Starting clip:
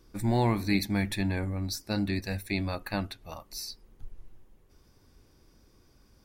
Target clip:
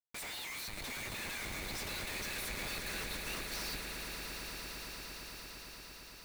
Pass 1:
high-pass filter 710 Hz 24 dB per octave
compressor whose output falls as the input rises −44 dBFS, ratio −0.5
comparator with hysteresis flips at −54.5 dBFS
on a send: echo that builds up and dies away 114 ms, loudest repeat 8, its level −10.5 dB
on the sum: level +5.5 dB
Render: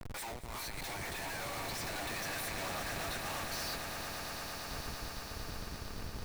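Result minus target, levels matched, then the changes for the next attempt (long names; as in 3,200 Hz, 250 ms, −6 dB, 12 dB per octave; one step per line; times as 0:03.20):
1,000 Hz band +5.5 dB
change: high-pass filter 2,000 Hz 24 dB per octave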